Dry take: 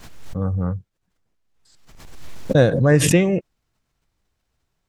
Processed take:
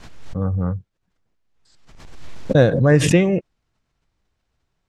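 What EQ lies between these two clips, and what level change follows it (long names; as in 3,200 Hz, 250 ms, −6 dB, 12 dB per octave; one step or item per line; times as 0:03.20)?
high-frequency loss of the air 56 metres
+1.0 dB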